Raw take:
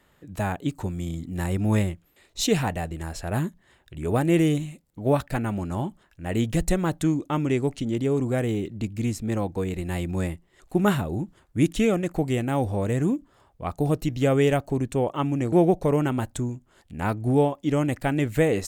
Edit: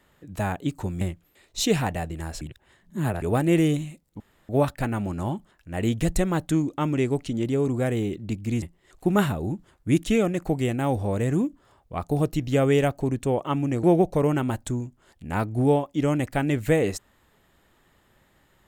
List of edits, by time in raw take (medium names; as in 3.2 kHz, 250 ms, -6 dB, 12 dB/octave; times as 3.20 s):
1.01–1.82 s: delete
3.22–4.03 s: reverse
5.01 s: insert room tone 0.29 s
9.14–10.31 s: delete